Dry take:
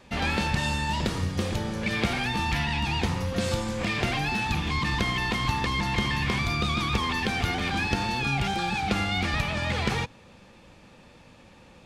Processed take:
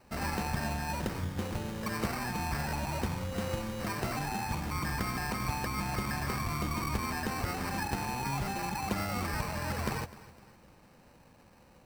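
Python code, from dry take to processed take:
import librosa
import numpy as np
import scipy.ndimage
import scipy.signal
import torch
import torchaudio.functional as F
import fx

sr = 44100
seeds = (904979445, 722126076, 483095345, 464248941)

p1 = fx.sample_hold(x, sr, seeds[0], rate_hz=3400.0, jitter_pct=0)
p2 = p1 + fx.echo_feedback(p1, sr, ms=254, feedback_pct=42, wet_db=-18.0, dry=0)
y = p2 * 10.0 ** (-7.0 / 20.0)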